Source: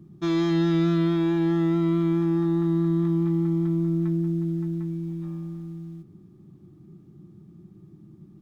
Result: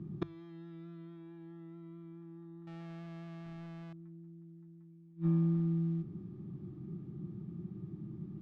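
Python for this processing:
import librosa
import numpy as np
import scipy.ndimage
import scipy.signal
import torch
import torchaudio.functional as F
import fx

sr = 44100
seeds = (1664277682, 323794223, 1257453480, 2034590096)

y = fx.halfwave_hold(x, sr, at=(2.67, 3.93))
y = scipy.signal.sosfilt(scipy.signal.butter(2, 3100.0, 'lowpass', fs=sr, output='sos'), y)
y = fx.peak_eq(y, sr, hz=130.0, db=4.5, octaves=1.4)
y = fx.gate_flip(y, sr, shuts_db=-23.0, range_db=-31)
y = fx.hum_notches(y, sr, base_hz=50, count=3)
y = F.gain(torch.from_numpy(y), 1.5).numpy()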